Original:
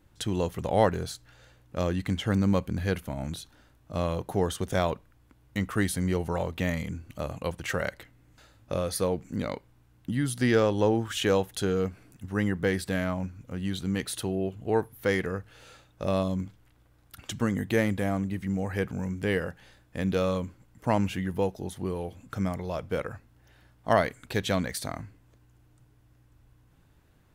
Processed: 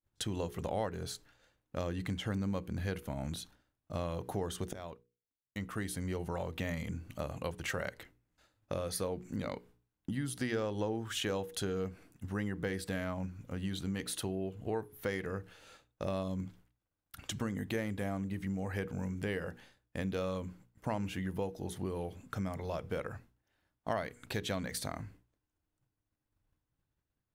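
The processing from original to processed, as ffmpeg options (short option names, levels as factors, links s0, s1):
-filter_complex "[0:a]asplit=2[s0][s1];[s0]atrim=end=4.73,asetpts=PTS-STARTPTS,afade=t=out:st=4.726:d=0.004:c=hsin:silence=0.1[s2];[s1]atrim=start=4.73,asetpts=PTS-STARTPTS,afade=t=in:d=2.15:silence=0.1[s3];[s2][s3]concat=n=2:v=0:a=1,agate=range=0.0224:threshold=0.00447:ratio=3:detection=peak,bandreject=f=60:t=h:w=6,bandreject=f=120:t=h:w=6,bandreject=f=180:t=h:w=6,bandreject=f=240:t=h:w=6,bandreject=f=300:t=h:w=6,bandreject=f=360:t=h:w=6,bandreject=f=420:t=h:w=6,bandreject=f=480:t=h:w=6,acompressor=threshold=0.0224:ratio=3,volume=0.841"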